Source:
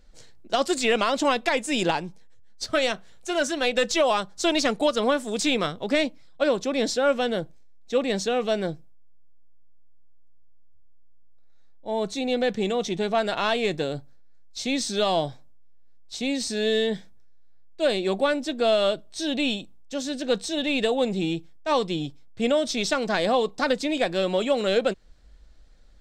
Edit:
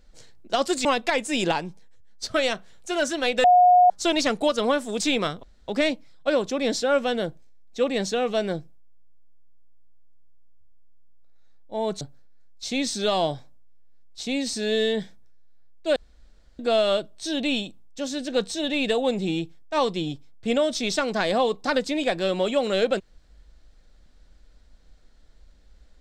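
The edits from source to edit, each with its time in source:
0.85–1.24 cut
3.83–4.29 bleep 721 Hz -11.5 dBFS
5.82 insert room tone 0.25 s
12.15–13.95 cut
17.9–18.53 room tone

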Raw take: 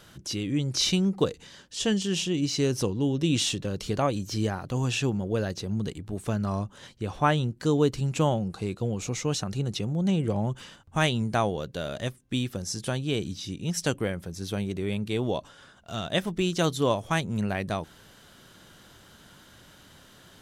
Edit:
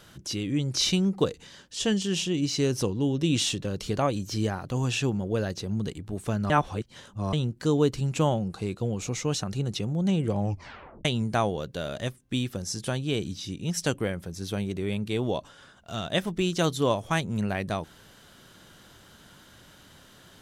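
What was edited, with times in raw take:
6.5–7.33 reverse
10.39 tape stop 0.66 s

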